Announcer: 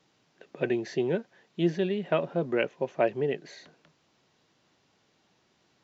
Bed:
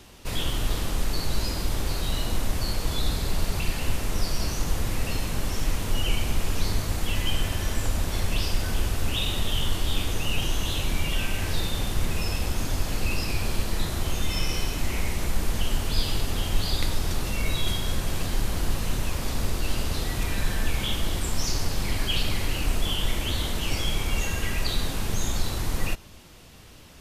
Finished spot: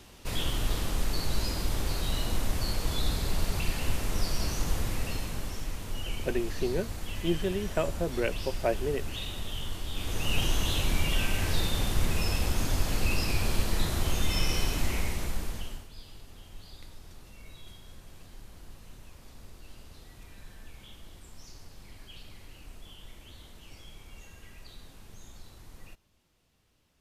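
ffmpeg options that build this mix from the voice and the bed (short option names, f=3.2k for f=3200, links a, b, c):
-filter_complex "[0:a]adelay=5650,volume=-3dB[a];[1:a]volume=6dB,afade=t=out:st=4.73:d=0.95:silence=0.446684,afade=t=in:st=9.93:d=0.44:silence=0.354813,afade=t=out:st=14.77:d=1.11:silence=0.0841395[b];[a][b]amix=inputs=2:normalize=0"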